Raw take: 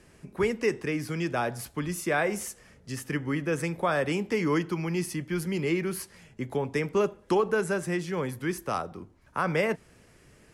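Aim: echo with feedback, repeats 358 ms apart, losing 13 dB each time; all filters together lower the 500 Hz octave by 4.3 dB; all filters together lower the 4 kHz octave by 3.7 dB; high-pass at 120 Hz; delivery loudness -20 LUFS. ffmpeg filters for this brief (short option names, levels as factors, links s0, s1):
-af "highpass=120,equalizer=f=500:t=o:g=-5.5,equalizer=f=4000:t=o:g=-5.5,aecho=1:1:358|716|1074:0.224|0.0493|0.0108,volume=3.98"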